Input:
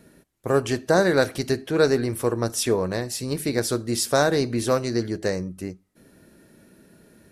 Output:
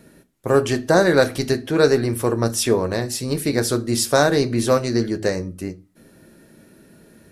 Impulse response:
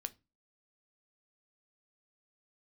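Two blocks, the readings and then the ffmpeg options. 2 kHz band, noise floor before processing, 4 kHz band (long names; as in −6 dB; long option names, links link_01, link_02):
+3.5 dB, −61 dBFS, +3.5 dB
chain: -filter_complex "[1:a]atrim=start_sample=2205[link_01];[0:a][link_01]afir=irnorm=-1:irlink=0,volume=6dB"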